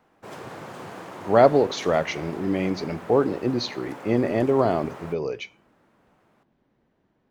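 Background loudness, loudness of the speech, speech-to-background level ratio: -40.0 LUFS, -23.5 LUFS, 16.5 dB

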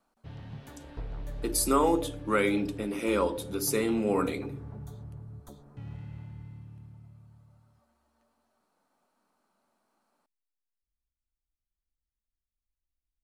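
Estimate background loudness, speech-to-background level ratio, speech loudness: -44.0 LUFS, 15.5 dB, -28.5 LUFS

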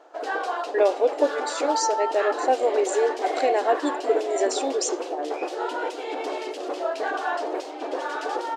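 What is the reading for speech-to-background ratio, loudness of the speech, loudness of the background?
4.0 dB, -25.0 LUFS, -29.0 LUFS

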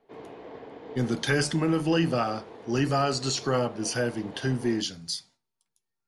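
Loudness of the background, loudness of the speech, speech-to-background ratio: -45.0 LUFS, -27.5 LUFS, 17.5 dB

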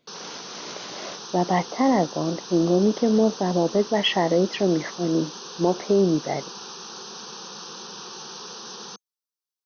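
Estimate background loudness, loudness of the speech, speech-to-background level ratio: -36.5 LUFS, -23.0 LUFS, 13.5 dB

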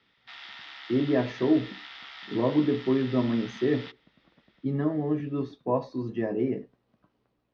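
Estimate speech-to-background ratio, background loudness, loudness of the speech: 14.5 dB, -42.5 LUFS, -28.0 LUFS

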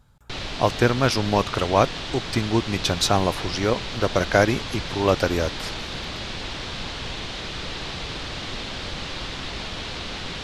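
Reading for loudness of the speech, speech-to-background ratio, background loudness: -23.0 LUFS, 8.0 dB, -31.0 LUFS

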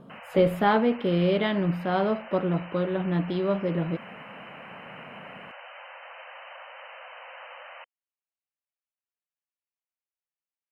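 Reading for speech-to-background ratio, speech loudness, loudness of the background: 17.5 dB, -26.0 LUFS, -43.5 LUFS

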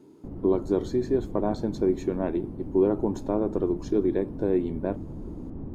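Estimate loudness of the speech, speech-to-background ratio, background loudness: -27.0 LUFS, 12.0 dB, -39.0 LUFS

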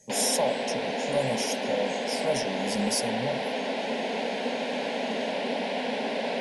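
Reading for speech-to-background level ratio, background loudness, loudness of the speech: -0.5 dB, -30.0 LUFS, -30.5 LUFS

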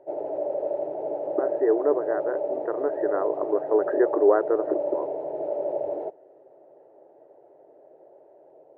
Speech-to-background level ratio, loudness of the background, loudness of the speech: 3.5 dB, -29.5 LUFS, -26.0 LUFS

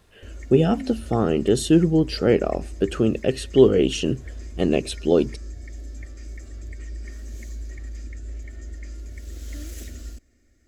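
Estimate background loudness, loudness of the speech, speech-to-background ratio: -38.5 LUFS, -21.0 LUFS, 17.5 dB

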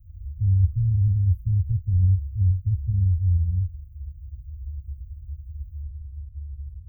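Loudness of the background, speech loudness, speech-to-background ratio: -38.0 LUFS, -23.0 LUFS, 15.0 dB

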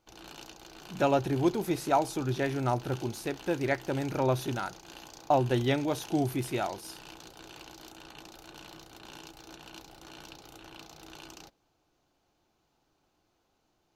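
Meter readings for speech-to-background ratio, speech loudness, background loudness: 18.0 dB, -30.0 LUFS, -48.0 LUFS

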